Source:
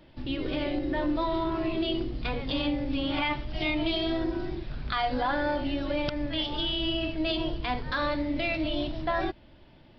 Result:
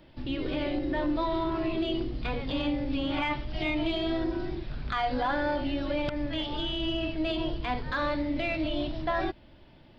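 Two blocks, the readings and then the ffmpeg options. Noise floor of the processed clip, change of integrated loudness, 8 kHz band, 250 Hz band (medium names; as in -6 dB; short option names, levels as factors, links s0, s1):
-54 dBFS, -1.0 dB, no reading, -0.5 dB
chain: -filter_complex "[0:a]acrossover=split=3000[s0][s1];[s1]acompressor=threshold=0.00708:ratio=4:attack=1:release=60[s2];[s0][s2]amix=inputs=2:normalize=0,asoftclip=type=tanh:threshold=0.15"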